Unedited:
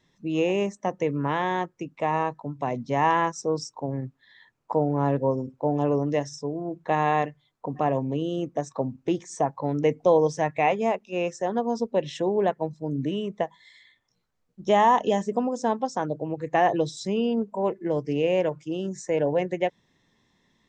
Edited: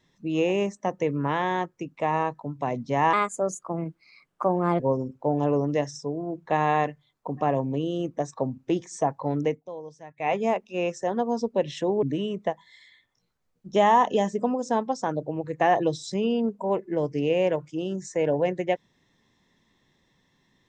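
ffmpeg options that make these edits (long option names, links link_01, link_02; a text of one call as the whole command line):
ffmpeg -i in.wav -filter_complex "[0:a]asplit=6[link_01][link_02][link_03][link_04][link_05][link_06];[link_01]atrim=end=3.134[link_07];[link_02]atrim=start=3.13:end=5.18,asetpts=PTS-STARTPTS,asetrate=54243,aresample=44100[link_08];[link_03]atrim=start=5.176:end=10,asetpts=PTS-STARTPTS,afade=type=out:start_time=4.614:duration=0.21:silence=0.112202[link_09];[link_04]atrim=start=10:end=10.54,asetpts=PTS-STARTPTS,volume=-19dB[link_10];[link_05]atrim=start=10.54:end=12.412,asetpts=PTS-STARTPTS,afade=type=in:duration=0.21:silence=0.112202[link_11];[link_06]atrim=start=12.958[link_12];[link_07][link_08]acrossfade=duration=0.004:curve1=hsin:curve2=hsin[link_13];[link_09][link_10][link_11]concat=n=3:v=0:a=1[link_14];[link_13][link_14]acrossfade=duration=0.004:curve1=hsin:curve2=hsin[link_15];[link_15][link_12]acrossfade=duration=0.004:curve1=hsin:curve2=hsin" out.wav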